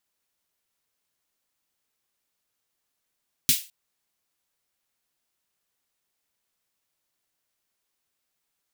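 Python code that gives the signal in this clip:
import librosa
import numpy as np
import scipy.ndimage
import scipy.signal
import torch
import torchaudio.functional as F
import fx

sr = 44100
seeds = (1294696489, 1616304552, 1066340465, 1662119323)

y = fx.drum_snare(sr, seeds[0], length_s=0.21, hz=150.0, second_hz=250.0, noise_db=11.5, noise_from_hz=2400.0, decay_s=0.1, noise_decay_s=0.3)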